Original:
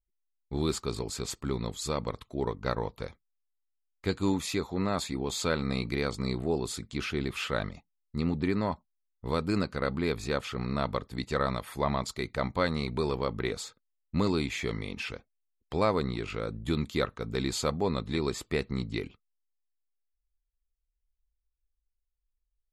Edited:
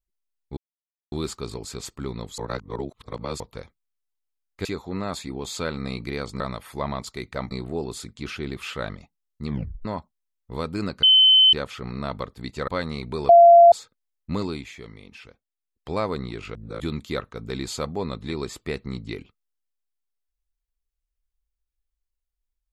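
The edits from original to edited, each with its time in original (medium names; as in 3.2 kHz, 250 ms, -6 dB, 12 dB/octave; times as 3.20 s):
0.57 s: insert silence 0.55 s
1.83–2.85 s: reverse
4.10–4.50 s: delete
8.21 s: tape stop 0.38 s
9.77–10.27 s: bleep 3.06 kHz -11 dBFS
11.42–12.53 s: move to 6.25 s
13.14–13.57 s: bleep 686 Hz -7 dBFS
14.24–15.77 s: dip -9 dB, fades 0.37 s
16.40–16.65 s: reverse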